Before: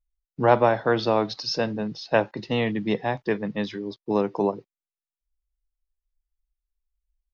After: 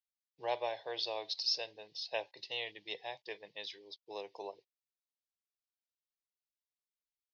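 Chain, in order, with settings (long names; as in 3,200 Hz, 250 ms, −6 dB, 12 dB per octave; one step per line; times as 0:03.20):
low-pass filter 4,800 Hz 24 dB per octave
first difference
phaser with its sweep stopped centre 560 Hz, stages 4
level +4.5 dB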